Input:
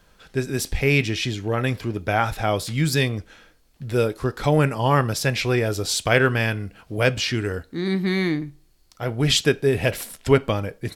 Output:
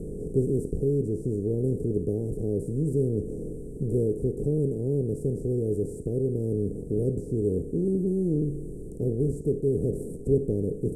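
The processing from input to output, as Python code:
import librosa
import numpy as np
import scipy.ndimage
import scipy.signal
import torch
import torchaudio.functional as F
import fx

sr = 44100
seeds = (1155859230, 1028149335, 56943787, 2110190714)

y = fx.bin_compress(x, sr, power=0.4)
y = fx.rider(y, sr, range_db=5, speed_s=0.5)
y = scipy.signal.sosfilt(scipy.signal.cheby1(4, 1.0, [440.0, 8900.0], 'bandstop', fs=sr, output='sos'), y)
y = fx.air_absorb(y, sr, metres=95.0)
y = y * librosa.db_to_amplitude(-7.5)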